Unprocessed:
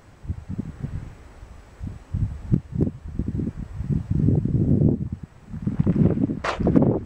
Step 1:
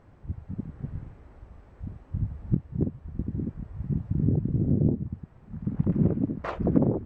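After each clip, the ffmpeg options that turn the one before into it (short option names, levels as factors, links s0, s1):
-af "lowpass=f=1000:p=1,volume=0.596"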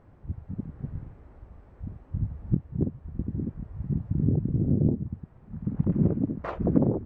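-af "highshelf=f=2300:g=-8"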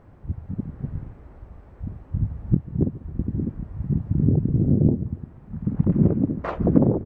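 -filter_complex "[0:a]asplit=2[s0][s1];[s1]adelay=143,lowpass=f=1700:p=1,volume=0.1,asplit=2[s2][s3];[s3]adelay=143,lowpass=f=1700:p=1,volume=0.48,asplit=2[s4][s5];[s5]adelay=143,lowpass=f=1700:p=1,volume=0.48,asplit=2[s6][s7];[s7]adelay=143,lowpass=f=1700:p=1,volume=0.48[s8];[s0][s2][s4][s6][s8]amix=inputs=5:normalize=0,volume=1.78"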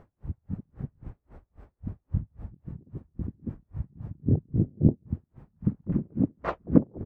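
-af "aeval=exprs='val(0)*pow(10,-38*(0.5-0.5*cos(2*PI*3.7*n/s))/20)':c=same"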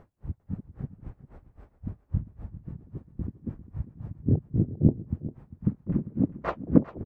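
-af "aecho=1:1:399:0.168"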